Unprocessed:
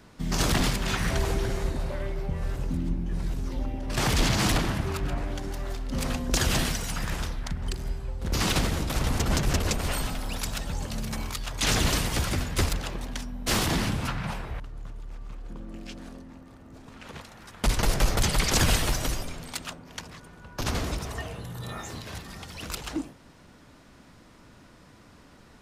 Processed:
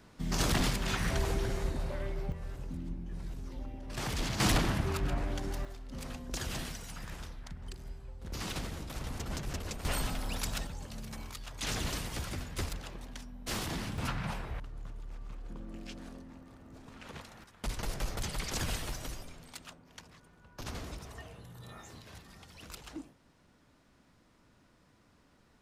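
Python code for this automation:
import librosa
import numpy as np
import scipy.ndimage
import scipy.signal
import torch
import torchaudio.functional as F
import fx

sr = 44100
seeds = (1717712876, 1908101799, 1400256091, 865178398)

y = fx.gain(x, sr, db=fx.steps((0.0, -5.0), (2.32, -11.0), (4.4, -3.0), (5.65, -13.0), (9.85, -4.0), (10.67, -11.0), (13.98, -4.5), (17.44, -12.5)))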